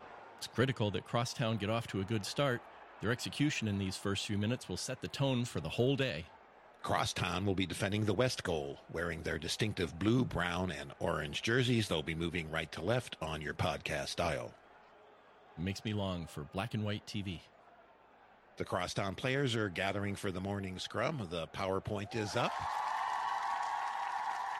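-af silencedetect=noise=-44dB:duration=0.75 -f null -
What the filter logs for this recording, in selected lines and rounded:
silence_start: 14.49
silence_end: 15.58 | silence_duration: 1.08
silence_start: 17.38
silence_end: 18.58 | silence_duration: 1.19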